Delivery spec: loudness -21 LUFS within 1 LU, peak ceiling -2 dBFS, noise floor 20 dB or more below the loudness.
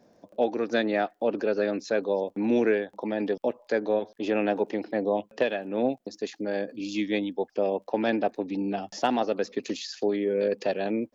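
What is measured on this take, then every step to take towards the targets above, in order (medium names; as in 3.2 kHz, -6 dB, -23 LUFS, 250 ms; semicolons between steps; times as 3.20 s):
tick rate 21 per s; loudness -28.0 LUFS; peak level -10.5 dBFS; loudness target -21.0 LUFS
-> de-click; trim +7 dB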